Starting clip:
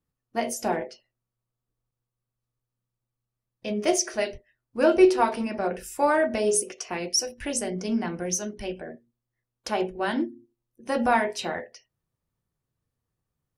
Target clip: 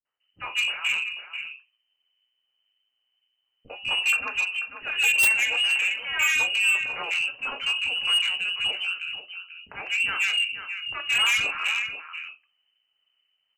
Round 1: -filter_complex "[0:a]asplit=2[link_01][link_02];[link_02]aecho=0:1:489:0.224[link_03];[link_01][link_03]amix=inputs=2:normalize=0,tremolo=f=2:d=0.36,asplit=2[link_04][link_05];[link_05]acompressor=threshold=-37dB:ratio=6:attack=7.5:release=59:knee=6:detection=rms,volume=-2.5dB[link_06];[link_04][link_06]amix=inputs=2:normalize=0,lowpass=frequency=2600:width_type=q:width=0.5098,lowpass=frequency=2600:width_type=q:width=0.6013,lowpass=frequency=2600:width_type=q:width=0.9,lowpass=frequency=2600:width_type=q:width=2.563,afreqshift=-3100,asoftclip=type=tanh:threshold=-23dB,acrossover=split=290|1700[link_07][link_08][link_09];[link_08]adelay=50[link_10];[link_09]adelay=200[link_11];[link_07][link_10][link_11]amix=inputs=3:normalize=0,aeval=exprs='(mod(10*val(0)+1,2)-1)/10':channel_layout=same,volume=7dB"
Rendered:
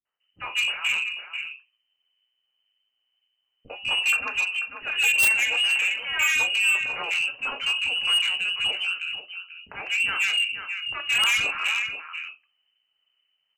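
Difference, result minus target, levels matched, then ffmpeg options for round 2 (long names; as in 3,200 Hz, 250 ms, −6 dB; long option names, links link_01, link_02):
downward compressor: peak gain reduction −8.5 dB
-filter_complex "[0:a]asplit=2[link_01][link_02];[link_02]aecho=0:1:489:0.224[link_03];[link_01][link_03]amix=inputs=2:normalize=0,tremolo=f=2:d=0.36,asplit=2[link_04][link_05];[link_05]acompressor=threshold=-47.5dB:ratio=6:attack=7.5:release=59:knee=6:detection=rms,volume=-2.5dB[link_06];[link_04][link_06]amix=inputs=2:normalize=0,lowpass=frequency=2600:width_type=q:width=0.5098,lowpass=frequency=2600:width_type=q:width=0.6013,lowpass=frequency=2600:width_type=q:width=0.9,lowpass=frequency=2600:width_type=q:width=2.563,afreqshift=-3100,asoftclip=type=tanh:threshold=-23dB,acrossover=split=290|1700[link_07][link_08][link_09];[link_08]adelay=50[link_10];[link_09]adelay=200[link_11];[link_07][link_10][link_11]amix=inputs=3:normalize=0,aeval=exprs='(mod(10*val(0)+1,2)-1)/10':channel_layout=same,volume=7dB"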